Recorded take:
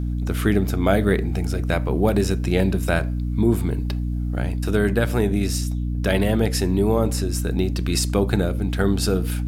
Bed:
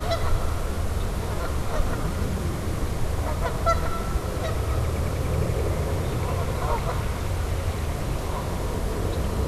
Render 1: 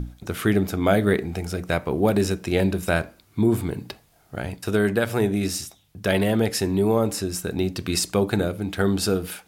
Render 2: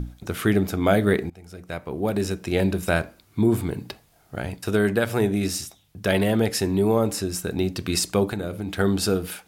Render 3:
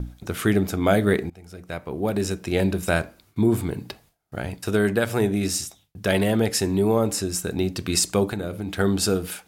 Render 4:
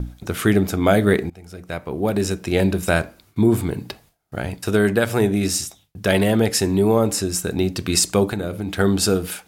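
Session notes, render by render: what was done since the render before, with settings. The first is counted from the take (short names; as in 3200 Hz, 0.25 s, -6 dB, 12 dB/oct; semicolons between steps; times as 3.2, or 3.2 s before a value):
notches 60/120/180/240/300 Hz
1.3–2.74 fade in, from -21.5 dB; 8.26–8.71 compressor, threshold -24 dBFS
gate with hold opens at -47 dBFS; dynamic EQ 7500 Hz, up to +5 dB, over -43 dBFS, Q 1.5
gain +3.5 dB; limiter -2 dBFS, peak gain reduction 1 dB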